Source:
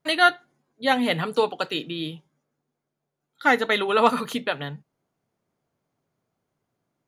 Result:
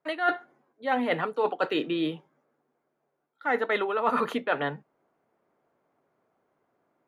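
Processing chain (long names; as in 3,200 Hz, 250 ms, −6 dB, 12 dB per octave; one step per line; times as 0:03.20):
three-way crossover with the lows and the highs turned down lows −16 dB, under 270 Hz, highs −18 dB, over 2,200 Hz
reversed playback
downward compressor 12 to 1, threshold −31 dBFS, peak gain reduction 19 dB
reversed playback
level +8.5 dB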